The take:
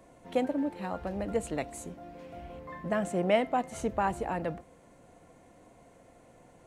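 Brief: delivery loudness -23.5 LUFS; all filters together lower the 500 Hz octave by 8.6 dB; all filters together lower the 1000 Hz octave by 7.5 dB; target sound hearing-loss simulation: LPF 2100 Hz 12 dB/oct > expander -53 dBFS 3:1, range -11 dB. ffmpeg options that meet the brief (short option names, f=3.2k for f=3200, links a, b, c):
-af "lowpass=2.1k,equalizer=f=500:t=o:g=-9,equalizer=f=1k:t=o:g=-6,agate=range=-11dB:threshold=-53dB:ratio=3,volume=14dB"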